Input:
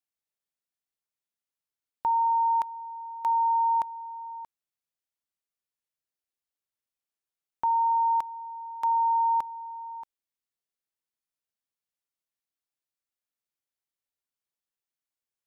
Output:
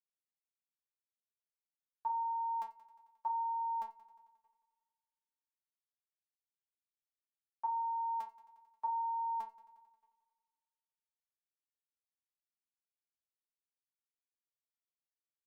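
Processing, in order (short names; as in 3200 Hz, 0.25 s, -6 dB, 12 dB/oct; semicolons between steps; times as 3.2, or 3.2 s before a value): gate with hold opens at -28 dBFS; metallic resonator 220 Hz, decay 0.29 s, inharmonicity 0.002; multi-head echo 89 ms, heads first and second, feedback 57%, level -21.5 dB; gain +4 dB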